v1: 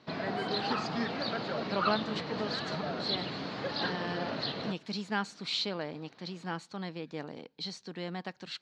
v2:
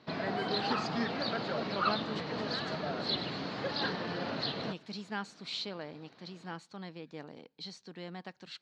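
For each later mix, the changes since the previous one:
speech −5.5 dB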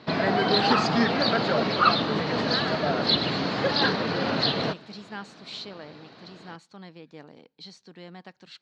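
background +11.0 dB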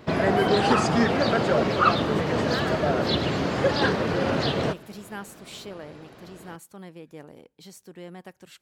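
master: remove loudspeaker in its box 150–5,500 Hz, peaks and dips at 370 Hz −5 dB, 550 Hz −4 dB, 4,200 Hz +10 dB

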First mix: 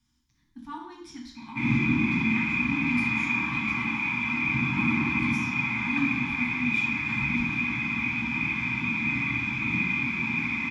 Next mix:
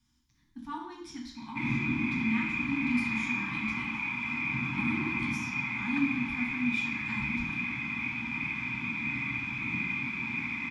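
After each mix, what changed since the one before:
background: send −8.0 dB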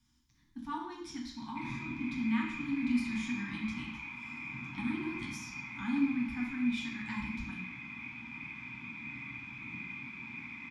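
background −10.5 dB

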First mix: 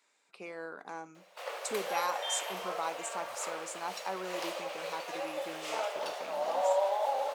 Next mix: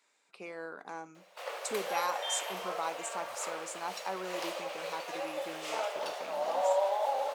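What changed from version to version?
nothing changed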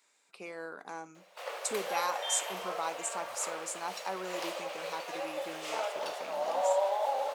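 speech: add high-shelf EQ 6,400 Hz +8 dB

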